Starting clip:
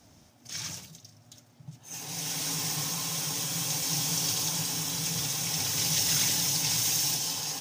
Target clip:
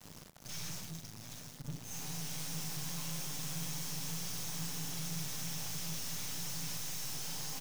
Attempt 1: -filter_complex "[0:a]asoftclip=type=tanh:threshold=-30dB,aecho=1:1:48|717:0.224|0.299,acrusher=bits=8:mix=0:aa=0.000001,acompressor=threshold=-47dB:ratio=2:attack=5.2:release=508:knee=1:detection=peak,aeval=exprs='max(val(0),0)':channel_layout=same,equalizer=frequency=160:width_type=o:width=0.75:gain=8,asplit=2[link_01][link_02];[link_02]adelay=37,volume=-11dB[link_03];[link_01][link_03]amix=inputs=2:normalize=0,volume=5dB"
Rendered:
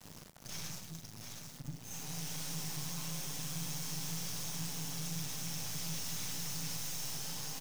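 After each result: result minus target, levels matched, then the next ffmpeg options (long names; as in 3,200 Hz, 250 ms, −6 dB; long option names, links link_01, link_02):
downward compressor: peak gain reduction +9.5 dB; soft clipping: distortion −6 dB
-filter_complex "[0:a]asoftclip=type=tanh:threshold=-30dB,aecho=1:1:48|717:0.224|0.299,aeval=exprs='max(val(0),0)':channel_layout=same,acrusher=bits=8:mix=0:aa=0.000001,equalizer=frequency=160:width_type=o:width=0.75:gain=8,asplit=2[link_01][link_02];[link_02]adelay=37,volume=-11dB[link_03];[link_01][link_03]amix=inputs=2:normalize=0,volume=5dB"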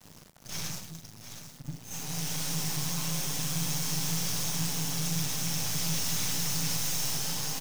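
soft clipping: distortion −6 dB
-filter_complex "[0:a]asoftclip=type=tanh:threshold=-42dB,aecho=1:1:48|717:0.224|0.299,aeval=exprs='max(val(0),0)':channel_layout=same,acrusher=bits=8:mix=0:aa=0.000001,equalizer=frequency=160:width_type=o:width=0.75:gain=8,asplit=2[link_01][link_02];[link_02]adelay=37,volume=-11dB[link_03];[link_01][link_03]amix=inputs=2:normalize=0,volume=5dB"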